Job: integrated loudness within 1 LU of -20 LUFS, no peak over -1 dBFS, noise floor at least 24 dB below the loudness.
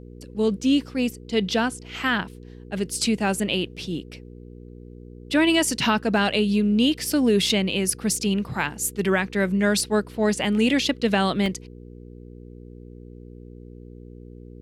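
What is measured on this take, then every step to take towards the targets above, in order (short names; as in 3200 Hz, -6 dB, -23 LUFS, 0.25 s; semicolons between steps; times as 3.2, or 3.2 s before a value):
dropouts 1; longest dropout 1.1 ms; hum 60 Hz; harmonics up to 480 Hz; hum level -41 dBFS; loudness -23.0 LUFS; peak -9.0 dBFS; loudness target -20.0 LUFS
-> interpolate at 11.46, 1.1 ms; de-hum 60 Hz, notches 8; gain +3 dB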